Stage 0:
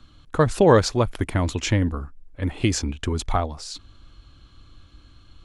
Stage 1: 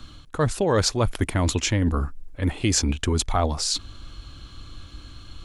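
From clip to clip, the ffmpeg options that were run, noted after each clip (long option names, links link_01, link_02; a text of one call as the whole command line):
ffmpeg -i in.wav -af "highshelf=frequency=4800:gain=6.5,areverse,acompressor=threshold=-27dB:ratio=6,areverse,volume=8dB" out.wav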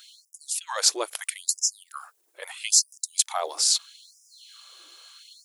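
ffmpeg -i in.wav -af "aemphasis=mode=production:type=75kf,afftfilt=real='re*gte(b*sr/1024,300*pow(5000/300,0.5+0.5*sin(2*PI*0.77*pts/sr)))':imag='im*gte(b*sr/1024,300*pow(5000/300,0.5+0.5*sin(2*PI*0.77*pts/sr)))':win_size=1024:overlap=0.75,volume=-5dB" out.wav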